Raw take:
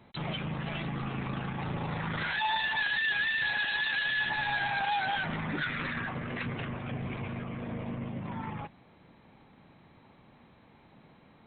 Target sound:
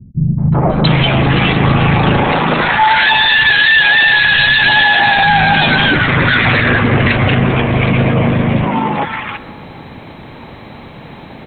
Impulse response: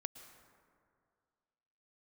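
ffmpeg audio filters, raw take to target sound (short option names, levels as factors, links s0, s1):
-filter_complex "[0:a]acrossover=split=200|1200[s0][s1][s2];[s1]adelay=380[s3];[s2]adelay=700[s4];[s0][s3][s4]amix=inputs=3:normalize=0,asplit=2[s5][s6];[1:a]atrim=start_sample=2205[s7];[s6][s7]afir=irnorm=-1:irlink=0,volume=1.06[s8];[s5][s8]amix=inputs=2:normalize=0,alimiter=level_in=14.1:limit=0.891:release=50:level=0:latency=1,volume=0.891"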